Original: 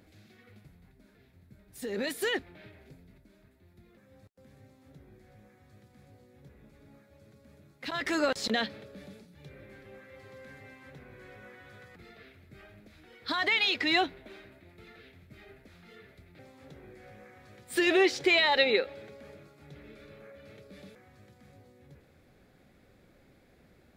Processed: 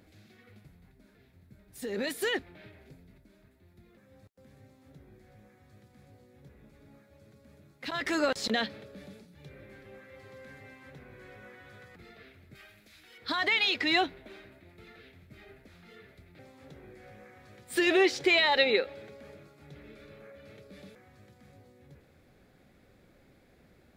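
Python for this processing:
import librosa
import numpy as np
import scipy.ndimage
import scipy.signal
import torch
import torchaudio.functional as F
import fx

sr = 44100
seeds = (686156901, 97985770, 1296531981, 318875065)

y = fx.tilt_shelf(x, sr, db=-8.5, hz=1400.0, at=(12.55, 13.18))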